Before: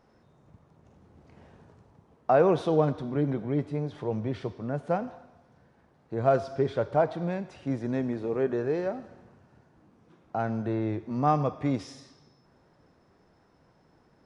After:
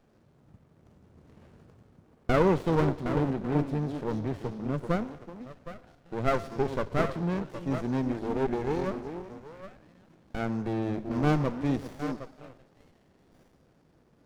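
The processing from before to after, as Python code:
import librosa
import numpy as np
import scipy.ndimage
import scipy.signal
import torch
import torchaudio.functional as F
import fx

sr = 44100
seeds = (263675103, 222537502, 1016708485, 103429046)

y = fx.high_shelf(x, sr, hz=4700.0, db=10.5)
y = fx.echo_stepped(y, sr, ms=382, hz=280.0, octaves=1.4, feedback_pct=70, wet_db=-5)
y = fx.running_max(y, sr, window=33)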